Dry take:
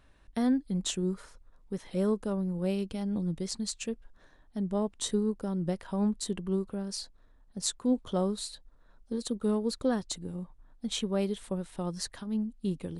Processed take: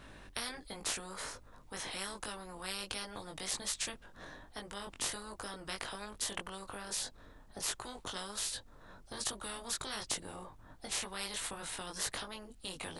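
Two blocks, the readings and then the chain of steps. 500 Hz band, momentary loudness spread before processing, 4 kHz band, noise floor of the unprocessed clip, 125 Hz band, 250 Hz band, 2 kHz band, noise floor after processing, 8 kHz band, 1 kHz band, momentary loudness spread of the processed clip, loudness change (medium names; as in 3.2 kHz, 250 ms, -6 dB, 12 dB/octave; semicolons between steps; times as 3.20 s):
-14.0 dB, 11 LU, +0.5 dB, -61 dBFS, -18.0 dB, -20.5 dB, +6.0 dB, -57 dBFS, +1.0 dB, -1.5 dB, 11 LU, -7.0 dB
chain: chorus 1.3 Hz, delay 19 ms, depth 2.1 ms; spectrum-flattening compressor 10:1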